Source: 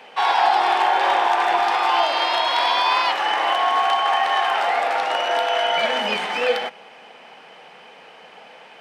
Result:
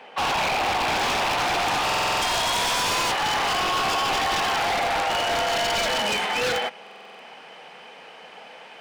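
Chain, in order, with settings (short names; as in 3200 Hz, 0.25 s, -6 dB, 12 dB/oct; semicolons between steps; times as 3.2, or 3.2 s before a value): high shelf 3500 Hz -6.5 dB, from 0.88 s +3 dB; wavefolder -18.5 dBFS; stuck buffer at 1.85/6.82, samples 2048, times 7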